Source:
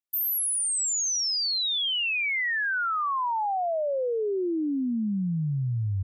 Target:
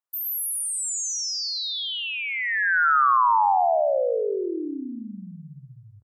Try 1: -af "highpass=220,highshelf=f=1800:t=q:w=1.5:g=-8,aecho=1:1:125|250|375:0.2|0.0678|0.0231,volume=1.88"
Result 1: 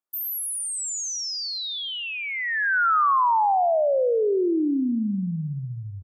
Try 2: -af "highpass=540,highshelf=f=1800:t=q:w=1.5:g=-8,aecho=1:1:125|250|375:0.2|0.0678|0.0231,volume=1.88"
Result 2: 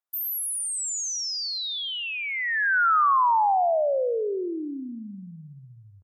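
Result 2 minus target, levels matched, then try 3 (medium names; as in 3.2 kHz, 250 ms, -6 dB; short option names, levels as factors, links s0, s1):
echo-to-direct -10 dB
-af "highpass=540,highshelf=f=1800:t=q:w=1.5:g=-8,aecho=1:1:125|250|375|500:0.631|0.215|0.0729|0.0248,volume=1.88"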